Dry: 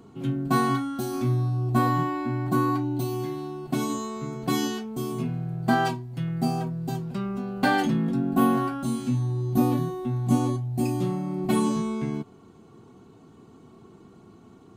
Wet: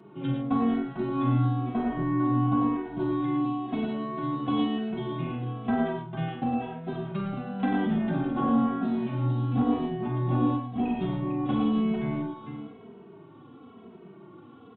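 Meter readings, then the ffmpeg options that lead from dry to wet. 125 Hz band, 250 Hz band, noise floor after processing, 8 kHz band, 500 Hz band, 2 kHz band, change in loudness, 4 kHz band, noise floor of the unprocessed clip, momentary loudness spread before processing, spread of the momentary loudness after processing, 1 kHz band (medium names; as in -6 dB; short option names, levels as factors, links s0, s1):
-3.0 dB, 0.0 dB, -50 dBFS, under -40 dB, -3.0 dB, -7.5 dB, -1.5 dB, -6.0 dB, -52 dBFS, 8 LU, 8 LU, -3.5 dB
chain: -filter_complex "[0:a]highpass=150,acrossover=split=610[s0][s1];[s0]asoftclip=type=tanh:threshold=0.0708[s2];[s1]acompressor=threshold=0.0126:ratio=6[s3];[s2][s3]amix=inputs=2:normalize=0,asplit=2[s4][s5];[s5]adelay=47,volume=0.376[s6];[s4][s6]amix=inputs=2:normalize=0,aecho=1:1:45|95|112|449|666:0.398|0.447|0.447|0.447|0.106,aresample=8000,aresample=44100,asplit=2[s7][s8];[s8]adelay=2.8,afreqshift=-0.99[s9];[s7][s9]amix=inputs=2:normalize=1,volume=1.41"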